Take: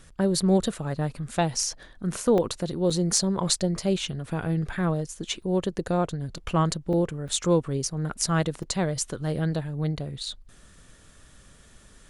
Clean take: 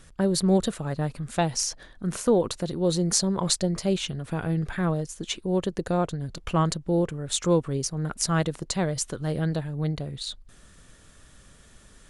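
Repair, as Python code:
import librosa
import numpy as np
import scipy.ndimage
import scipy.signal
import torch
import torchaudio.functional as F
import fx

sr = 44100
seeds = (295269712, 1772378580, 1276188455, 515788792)

y = fx.fix_declip(x, sr, threshold_db=-9.0)
y = fx.fix_interpolate(y, sr, at_s=(2.38, 2.9, 5.42, 6.93, 7.28, 8.63), length_ms=3.7)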